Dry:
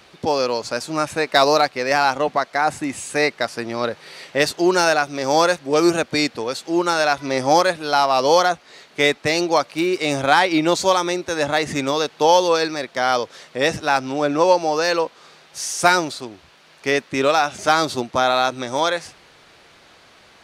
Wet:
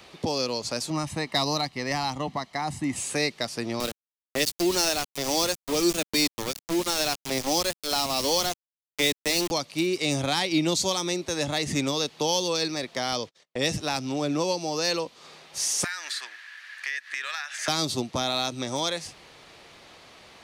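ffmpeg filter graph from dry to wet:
-filter_complex "[0:a]asettb=1/sr,asplit=3[s0][s1][s2];[s0]atrim=end=0.904[s3];[s1]atrim=start=0.9:end=2.96,asetpts=PTS-STARTPTS,afade=t=in:d=0.004:c=qsin,afade=t=out:st=2.056:d=0.004:c=qsin,highshelf=f=3100:g=-7,aecho=1:1:1:0.48,atrim=end_sample=90846[s4];[s2]atrim=start=2.956[s5];[s3][s4]acrossfade=d=0.004:c1=hsin:c2=qsin[s6];[s6][s5]acrossfade=d=0.004:c1=qsin:c2=hsin,asettb=1/sr,asplit=3[s7][s8][s9];[s7]atrim=end=3.804[s10];[s8]atrim=start=3.8:end=9.51,asetpts=PTS-STARTPTS,afade=t=in:d=0.004:c=qsin,afade=t=out:st=5.706:d=0.004:c=qsin,highpass=f=200:w=0.5412,highpass=f=200:w=1.3066,aeval=exprs='val(0)*gte(abs(val(0)),0.0841)':c=same[s11];[s9]atrim=start=9.506[s12];[s10][s11]acrossfade=d=0.004:c1=hsin:c2=qsin[s13];[s13][s12]acrossfade=d=0.004:c1=qsin:c2=hsin,asettb=1/sr,asplit=3[s14][s15][s16];[s14]atrim=end=13.124[s17];[s15]atrim=start=13.12:end=13.62,asetpts=PTS-STARTPTS,afade=t=in:d=0.004:c=qsin,afade=t=out:st=0.496:d=0.004:c=qsin,agate=range=0.00562:threshold=0.0112:ratio=16:release=100:detection=peak,equalizer=f=12000:w=2.1:g=-6.5[s18];[s16]atrim=start=13.616[s19];[s17][s18]acrossfade=d=0.004:c1=hsin:c2=qsin[s20];[s20][s19]acrossfade=d=0.004:c1=qsin:c2=hsin,asettb=1/sr,asplit=3[s21][s22][s23];[s21]atrim=end=15.844[s24];[s22]atrim=start=15.84:end=17.68,asetpts=PTS-STARTPTS,afade=t=in:d=0.004:c=qsin,afade=t=out:st=1.836:d=0.004:c=qsin,highpass=f=1700:t=q:w=11,acompressor=threshold=0.0501:ratio=3:attack=3.2:release=140:knee=1:detection=peak[s25];[s23]atrim=start=17.676[s26];[s24][s25]acrossfade=d=0.004:c1=hsin:c2=qsin[s27];[s27][s26]acrossfade=d=0.004:c1=qsin:c2=hsin,equalizer=f=1500:t=o:w=0.3:g=-6,acrossover=split=270|3000[s28][s29][s30];[s29]acompressor=threshold=0.0224:ratio=3[s31];[s28][s31][s30]amix=inputs=3:normalize=0"

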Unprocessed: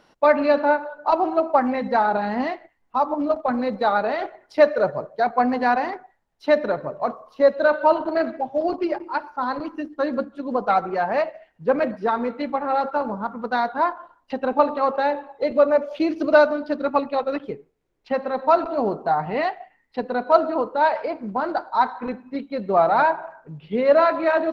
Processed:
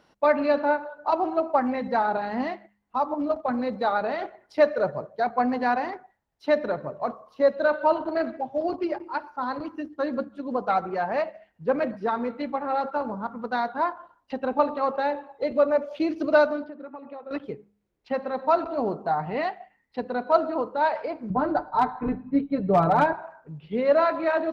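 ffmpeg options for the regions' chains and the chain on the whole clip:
-filter_complex "[0:a]asettb=1/sr,asplit=3[s0][s1][s2];[s0]atrim=end=16.644[s3];[s1]atrim=start=16.64:end=17.31,asetpts=PTS-STARTPTS,afade=t=in:d=0.004:c=qsin,afade=t=out:st=0.666:d=0.004:c=qsin,acompressor=threshold=0.0282:ratio=12:attack=3.2:release=140:knee=1:detection=peak,highpass=180,lowpass=2200[s4];[s2]atrim=start=17.306[s5];[s3][s4]acrossfade=d=0.004:c1=hsin:c2=qsin[s6];[s6][s5]acrossfade=d=0.004:c1=qsin:c2=hsin,asettb=1/sr,asplit=3[s7][s8][s9];[s7]atrim=end=21.304[s10];[s8]atrim=start=21.3:end=23.13,asetpts=PTS-STARTPTS,afade=t=in:d=0.004:c=qsin,afade=t=out:st=1.826:d=0.004:c=qsin,aemphasis=mode=reproduction:type=riaa,aecho=1:1:6.8:0.74,atrim=end_sample=80703,volume=2.66,asoftclip=hard,volume=0.376[s11];[s9]atrim=start=23.126[s12];[s10][s11]acrossfade=d=0.004:c1=hsin:c2=qsin[s13];[s13][s12]acrossfade=d=0.004:c1=qsin:c2=hsin,highpass=51,lowshelf=f=120:g=7.5,bandreject=f=102.5:t=h:w=4,bandreject=f=205:t=h:w=4,volume=0.596"

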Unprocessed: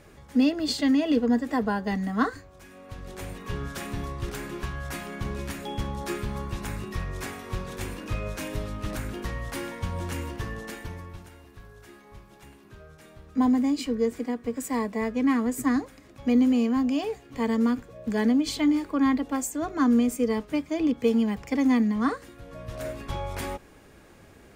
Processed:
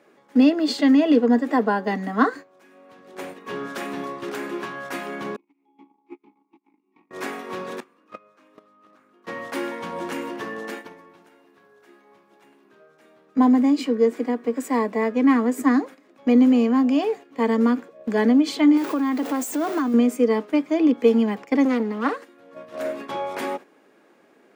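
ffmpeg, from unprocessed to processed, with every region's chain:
-filter_complex "[0:a]asettb=1/sr,asplit=3[s0][s1][s2];[s0]atrim=end=5.364[s3];[s1]atrim=start=5.36:end=7.11,asetpts=PTS-STARTPTS,afade=t=in:d=0.004:c=qsin,afade=t=out:st=1.746:d=0.004:c=qsin,agate=range=0.0282:threshold=0.0316:ratio=16:release=100:detection=peak,acompressor=mode=upward:threshold=0.0126:ratio=2.5:attack=3.2:release=140:knee=2.83:detection=peak,asplit=3[s4][s5][s6];[s4]bandpass=f=300:t=q:w=8,volume=1[s7];[s5]bandpass=f=870:t=q:w=8,volume=0.501[s8];[s6]bandpass=f=2240:t=q:w=8,volume=0.355[s9];[s7][s8][s9]amix=inputs=3:normalize=0[s10];[s2]atrim=start=7.106[s11];[s3][s10]acrossfade=d=0.004:c1=hsin:c2=qsin[s12];[s12][s11]acrossfade=d=0.004:c1=qsin:c2=hsin,asettb=1/sr,asplit=3[s13][s14][s15];[s13]atrim=end=7.804[s16];[s14]atrim=start=7.8:end=9.27,asetpts=PTS-STARTPTS,afade=t=in:d=0.004:c=qsin,afade=t=out:st=1.466:d=0.004:c=qsin,acrossover=split=6800[s17][s18];[s18]acompressor=threshold=0.00316:ratio=4:attack=1:release=60[s19];[s17][s19]amix=inputs=2:normalize=0,agate=range=0.1:threshold=0.0501:ratio=16:release=100:detection=peak,equalizer=f=1200:w=6:g=13[s20];[s15]atrim=start=9.266[s21];[s16][s20]acrossfade=d=0.004:c1=hsin:c2=qsin[s22];[s22][s21]acrossfade=d=0.004:c1=qsin:c2=hsin,asettb=1/sr,asplit=3[s23][s24][s25];[s23]atrim=end=18.774[s26];[s24]atrim=start=18.77:end=19.94,asetpts=PTS-STARTPTS,afade=t=in:d=0.004:c=qsin,afade=t=out:st=1.166:d=0.004:c=qsin,aeval=exprs='val(0)+0.5*0.0211*sgn(val(0))':c=same,highshelf=f=6700:g=9,acompressor=threshold=0.0501:ratio=6:attack=3.2:release=140:knee=1:detection=peak[s27];[s25]atrim=start=19.936[s28];[s26][s27]acrossfade=d=0.004:c1=hsin:c2=qsin[s29];[s29][s28]acrossfade=d=0.004:c1=qsin:c2=hsin,asettb=1/sr,asplit=3[s30][s31][s32];[s30]atrim=end=21.654[s33];[s31]atrim=start=21.65:end=22.33,asetpts=PTS-STARTPTS,afade=t=in:d=0.004:c=qsin,afade=t=out:st=0.676:d=0.004:c=qsin,highpass=f=200:p=1,aeval=exprs='clip(val(0),-1,0.0178)':c=same[s34];[s32]atrim=start=22.326[s35];[s33][s34]acrossfade=d=0.004:c1=hsin:c2=qsin[s36];[s36][s35]acrossfade=d=0.004:c1=qsin:c2=hsin,highpass=f=240:w=0.5412,highpass=f=240:w=1.3066,equalizer=f=11000:t=o:w=2.5:g=-10.5,agate=range=0.355:threshold=0.00794:ratio=16:detection=peak,volume=2.37"

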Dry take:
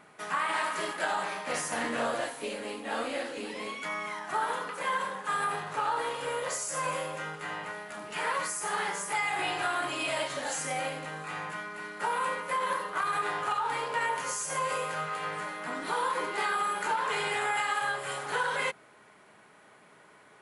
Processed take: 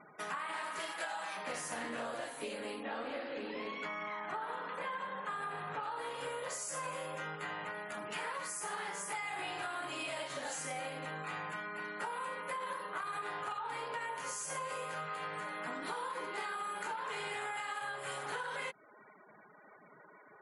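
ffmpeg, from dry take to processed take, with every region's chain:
-filter_complex "[0:a]asettb=1/sr,asplit=3[s0][s1][s2];[s0]atrim=end=0.794[s3];[s1]atrim=start=0.79:end=1.37,asetpts=PTS-STARTPTS,afade=t=in:d=0.004:c=qsin,afade=t=out:st=0.576:d=0.004:c=qsin,highpass=f=740:p=1,aecho=1:1:6.1:0.97,atrim=end_sample=25578[s4];[s2]atrim=start=1.366[s5];[s3][s4]acrossfade=d=0.004:c1=hsin:c2=qsin[s6];[s6][s5]acrossfade=d=0.004:c1=qsin:c2=hsin,asettb=1/sr,asplit=3[s7][s8][s9];[s7]atrim=end=2.834[s10];[s8]atrim=start=2.83:end=5.83,asetpts=PTS-STARTPTS,afade=t=in:d=0.004:c=qsin,afade=t=out:st=2.996:d=0.004:c=qsin,aemphasis=mode=reproduction:type=cd,aecho=1:1:168:0.398,atrim=end_sample=132300[s11];[s9]atrim=start=5.826[s12];[s10][s11]acrossfade=d=0.004:c1=hsin:c2=qsin[s13];[s13][s12]acrossfade=d=0.004:c1=qsin:c2=hsin,afftfilt=real='re*gte(hypot(re,im),0.00282)':imag='im*gte(hypot(re,im),0.00282)':win_size=1024:overlap=0.75,acompressor=threshold=0.0126:ratio=5"

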